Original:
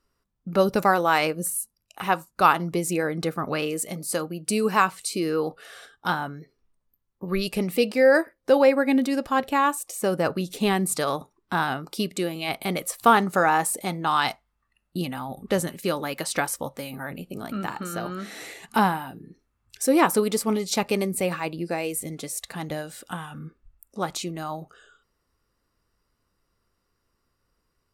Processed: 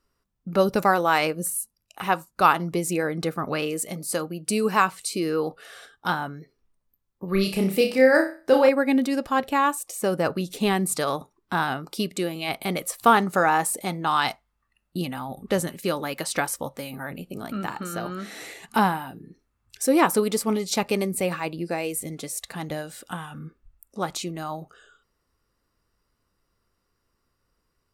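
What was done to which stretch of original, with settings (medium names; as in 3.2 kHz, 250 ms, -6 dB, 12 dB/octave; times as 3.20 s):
7.31–8.69 s: flutter echo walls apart 5.3 m, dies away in 0.35 s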